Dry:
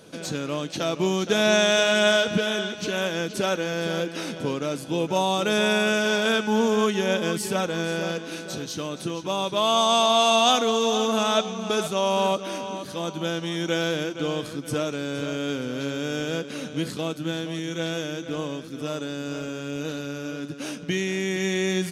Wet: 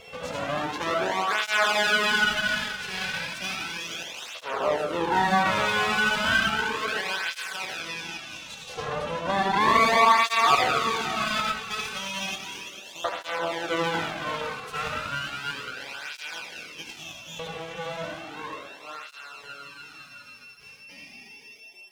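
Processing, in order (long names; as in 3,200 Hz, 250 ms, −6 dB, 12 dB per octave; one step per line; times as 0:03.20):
fade-out on the ending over 6.98 s
RIAA equalisation playback
echo with a time of its own for lows and highs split 590 Hz, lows 384 ms, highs 233 ms, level −15 dB
auto-filter high-pass saw up 0.23 Hz 650–3,200 Hz
convolution reverb RT60 0.70 s, pre-delay 67 ms, DRR −1 dB
steady tone 2,700 Hz −43 dBFS
in parallel at −1 dB: brickwall limiter −14.5 dBFS, peak gain reduction 10.5 dB
on the sum: half-wave rectification
0:07.80–0:09.61: high-shelf EQ 11,000 Hz −7 dB
through-zero flanger with one copy inverted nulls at 0.34 Hz, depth 3.4 ms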